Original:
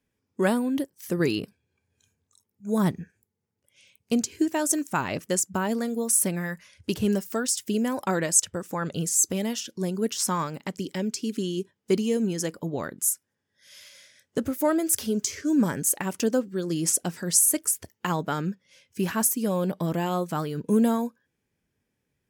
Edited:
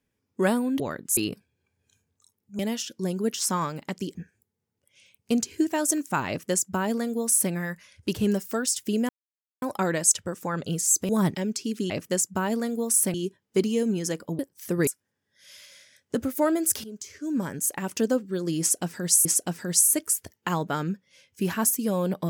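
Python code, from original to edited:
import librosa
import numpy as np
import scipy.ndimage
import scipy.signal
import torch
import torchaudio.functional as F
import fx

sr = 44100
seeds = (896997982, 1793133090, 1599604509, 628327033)

y = fx.edit(x, sr, fx.swap(start_s=0.8, length_s=0.48, other_s=12.73, other_length_s=0.37),
    fx.swap(start_s=2.7, length_s=0.26, other_s=9.37, other_length_s=1.56),
    fx.duplicate(start_s=5.09, length_s=1.24, to_s=11.48),
    fx.insert_silence(at_s=7.9, length_s=0.53),
    fx.fade_in_from(start_s=15.07, length_s=1.21, floor_db=-16.5),
    fx.repeat(start_s=16.83, length_s=0.65, count=2), tone=tone)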